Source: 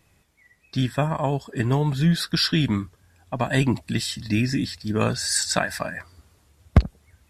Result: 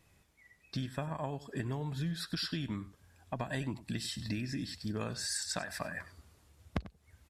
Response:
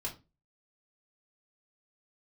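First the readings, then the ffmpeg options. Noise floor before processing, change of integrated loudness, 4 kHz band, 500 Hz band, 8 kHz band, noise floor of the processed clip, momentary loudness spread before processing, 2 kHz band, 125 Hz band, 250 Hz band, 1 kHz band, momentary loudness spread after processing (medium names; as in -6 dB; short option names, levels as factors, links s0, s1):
-63 dBFS, -14.5 dB, -13.0 dB, -14.5 dB, -12.5 dB, -68 dBFS, 10 LU, -13.5 dB, -15.5 dB, -14.5 dB, -14.0 dB, 8 LU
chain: -filter_complex "[0:a]acompressor=threshold=0.0355:ratio=6,asplit=2[s0][s1];[s1]aecho=0:1:96:0.15[s2];[s0][s2]amix=inputs=2:normalize=0,volume=0.562"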